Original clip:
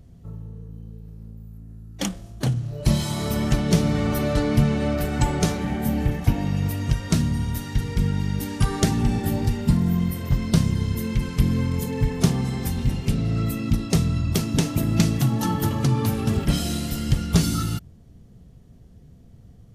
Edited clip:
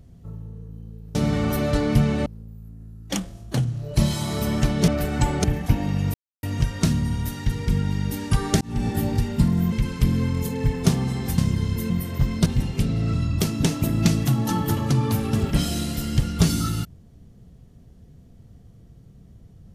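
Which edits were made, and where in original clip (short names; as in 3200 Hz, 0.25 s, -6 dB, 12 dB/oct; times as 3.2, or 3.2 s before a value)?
3.77–4.88 move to 1.15
5.44–6.02 cut
6.72 insert silence 0.29 s
8.9–9.17 fade in
10.01–10.57 swap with 11.09–12.75
13.42–14.07 cut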